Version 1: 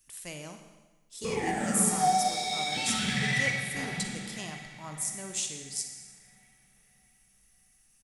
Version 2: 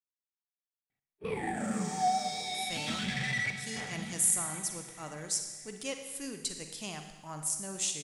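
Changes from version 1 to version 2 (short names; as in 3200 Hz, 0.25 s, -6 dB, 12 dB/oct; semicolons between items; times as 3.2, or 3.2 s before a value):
speech: entry +2.45 s; background: send -10.5 dB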